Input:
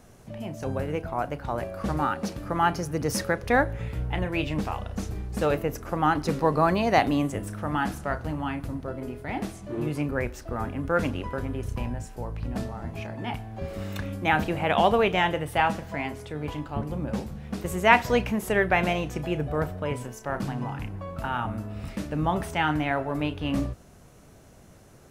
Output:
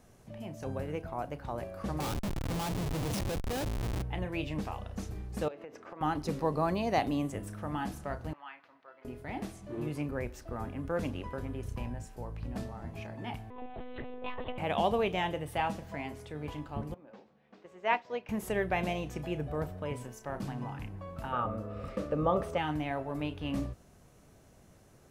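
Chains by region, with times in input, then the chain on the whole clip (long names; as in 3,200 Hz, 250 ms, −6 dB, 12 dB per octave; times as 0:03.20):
0:02.00–0:04.02: parametric band 110 Hz +5.5 dB 1.3 octaves + mains-hum notches 50/100 Hz + comparator with hysteresis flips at −29.5 dBFS
0:05.48–0:06.01: band-pass filter 310–3,600 Hz + downward compressor 8 to 1, threshold −34 dBFS
0:08.33–0:09.05: high-pass filter 1,200 Hz + high-frequency loss of the air 280 metres
0:13.50–0:14.58: frequency shifter +250 Hz + one-pitch LPC vocoder at 8 kHz 250 Hz + saturating transformer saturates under 130 Hz
0:16.94–0:18.29: high-pass filter 360 Hz + high-frequency loss of the air 180 metres + expander for the loud parts, over −35 dBFS
0:21.32–0:22.58: high-shelf EQ 5,900 Hz −8.5 dB + hollow resonant body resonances 520/1,200 Hz, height 17 dB, ringing for 30 ms
whole clip: notch filter 1,400 Hz, Q 26; dynamic equaliser 1,600 Hz, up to −5 dB, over −37 dBFS, Q 1.2; level −7 dB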